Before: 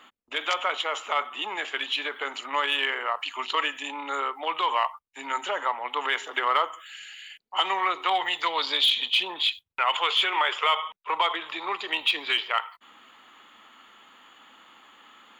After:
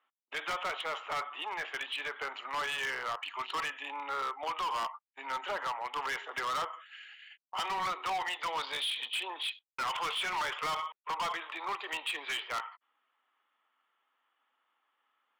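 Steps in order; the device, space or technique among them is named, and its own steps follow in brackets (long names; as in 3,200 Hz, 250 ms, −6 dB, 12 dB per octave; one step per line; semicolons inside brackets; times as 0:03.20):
walkie-talkie (band-pass filter 490–2,400 Hz; hard clipping −27.5 dBFS, distortion −7 dB; noise gate −47 dBFS, range −20 dB)
level −3 dB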